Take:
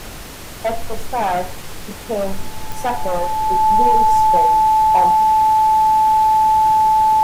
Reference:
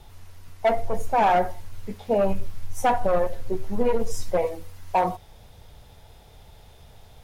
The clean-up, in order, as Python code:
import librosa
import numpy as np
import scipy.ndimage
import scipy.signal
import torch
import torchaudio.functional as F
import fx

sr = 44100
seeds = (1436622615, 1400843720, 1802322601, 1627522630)

y = fx.fix_declick_ar(x, sr, threshold=10.0)
y = fx.notch(y, sr, hz=870.0, q=30.0)
y = fx.noise_reduce(y, sr, print_start_s=0.11, print_end_s=0.61, reduce_db=17.0)